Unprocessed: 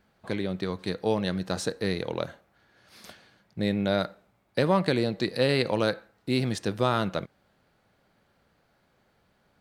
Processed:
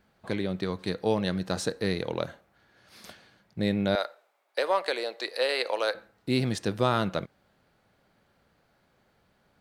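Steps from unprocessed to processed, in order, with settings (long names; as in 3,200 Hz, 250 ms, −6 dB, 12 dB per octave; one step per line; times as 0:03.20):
0:03.95–0:05.95: high-pass filter 480 Hz 24 dB per octave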